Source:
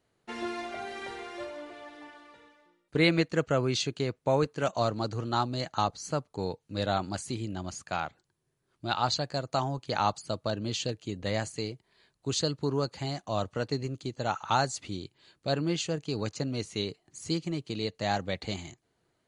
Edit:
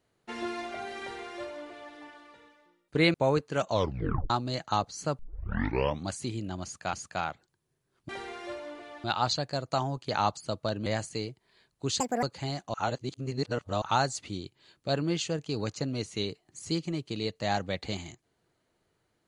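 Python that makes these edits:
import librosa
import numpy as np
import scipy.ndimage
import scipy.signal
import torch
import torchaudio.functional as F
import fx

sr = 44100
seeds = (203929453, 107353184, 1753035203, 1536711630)

y = fx.edit(x, sr, fx.duplicate(start_s=1.0, length_s=0.95, to_s=8.85),
    fx.cut(start_s=3.14, length_s=1.06),
    fx.tape_stop(start_s=4.77, length_s=0.59),
    fx.tape_start(start_s=6.25, length_s=0.92),
    fx.repeat(start_s=7.69, length_s=0.3, count=2),
    fx.cut(start_s=10.67, length_s=0.62),
    fx.speed_span(start_s=12.43, length_s=0.39, speed=1.71),
    fx.reverse_span(start_s=13.33, length_s=1.08), tone=tone)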